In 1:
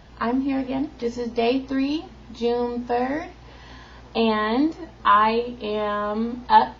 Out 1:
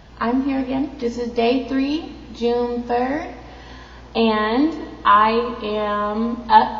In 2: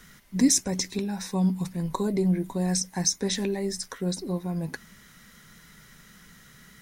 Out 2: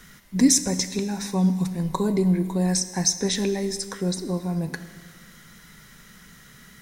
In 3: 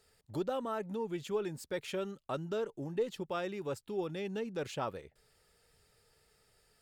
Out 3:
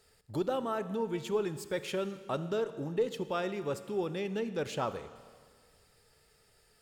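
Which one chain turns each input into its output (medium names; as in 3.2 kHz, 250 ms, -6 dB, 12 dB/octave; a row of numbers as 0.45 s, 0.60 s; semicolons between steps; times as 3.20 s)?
Schroeder reverb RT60 1.8 s, combs from 27 ms, DRR 12 dB; trim +3 dB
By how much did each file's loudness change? +3.5 LU, +3.5 LU, +3.0 LU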